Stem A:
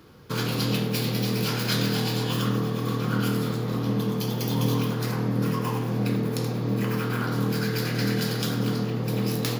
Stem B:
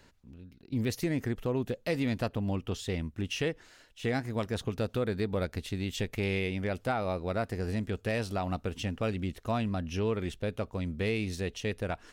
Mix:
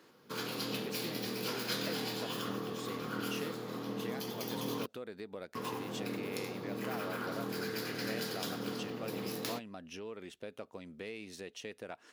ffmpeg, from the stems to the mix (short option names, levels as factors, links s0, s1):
-filter_complex "[0:a]volume=0.355,asplit=3[s0][s1][s2];[s0]atrim=end=4.86,asetpts=PTS-STARTPTS,afade=t=out:st=4.856:d=0.004:c=hsin[s3];[s1]atrim=start=4.86:end=5.55,asetpts=PTS-STARTPTS,volume=0[s4];[s2]atrim=start=5.55,asetpts=PTS-STARTPTS,afade=t=in:d=0.004:c=hsin[s5];[s3][s4][s5]concat=n=3:v=0:a=1[s6];[1:a]acompressor=threshold=0.0224:ratio=6,volume=0.562[s7];[s6][s7]amix=inputs=2:normalize=0,highpass=270"